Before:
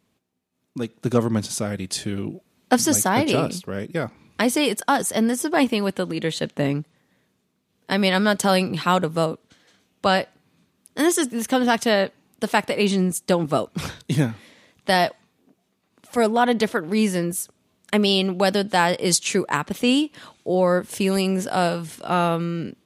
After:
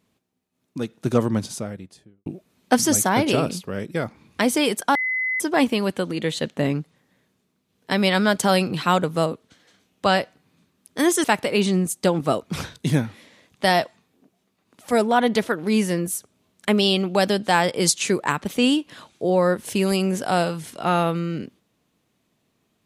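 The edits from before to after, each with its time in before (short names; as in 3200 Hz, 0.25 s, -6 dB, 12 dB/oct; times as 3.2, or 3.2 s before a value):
1.2–2.26 studio fade out
4.95–5.4 bleep 2030 Hz -21 dBFS
11.24–12.49 cut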